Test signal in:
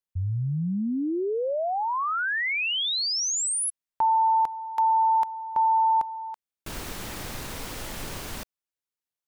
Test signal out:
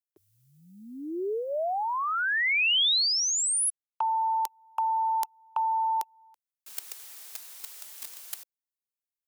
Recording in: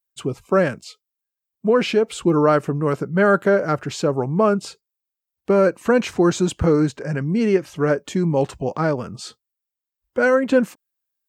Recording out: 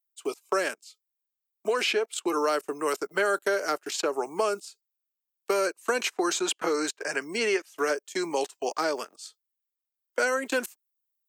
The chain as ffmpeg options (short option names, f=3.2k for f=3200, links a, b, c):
-filter_complex "[0:a]agate=range=-24dB:threshold=-33dB:ratio=16:release=39:detection=peak,highpass=f=390:w=0.5412,highpass=f=390:w=1.3066,equalizer=f=520:t=o:w=0.25:g=-8.5,acrossover=split=550|3000[a][b][c];[a]acompressor=threshold=-28dB:ratio=4[d];[b]acompressor=threshold=-34dB:ratio=4[e];[c]acompressor=threshold=-50dB:ratio=4[f];[d][e][f]amix=inputs=3:normalize=0,crystalizer=i=7:c=0"